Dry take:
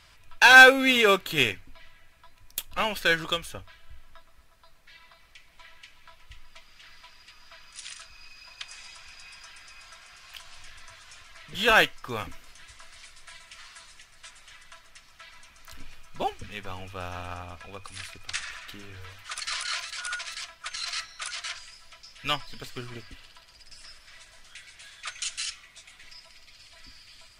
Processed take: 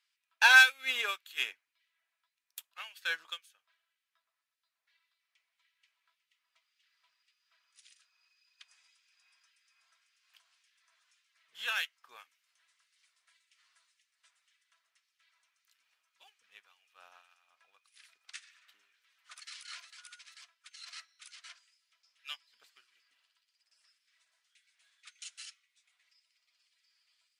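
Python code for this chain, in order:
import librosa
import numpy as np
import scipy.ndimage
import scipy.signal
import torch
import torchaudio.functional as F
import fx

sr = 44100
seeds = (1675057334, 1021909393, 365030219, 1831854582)

y = fx.filter_lfo_highpass(x, sr, shape='sine', hz=1.8, low_hz=820.0, high_hz=2200.0, q=0.78)
y = fx.upward_expand(y, sr, threshold_db=-47.0, expansion=1.5)
y = F.gain(torch.from_numpy(y), -4.5).numpy()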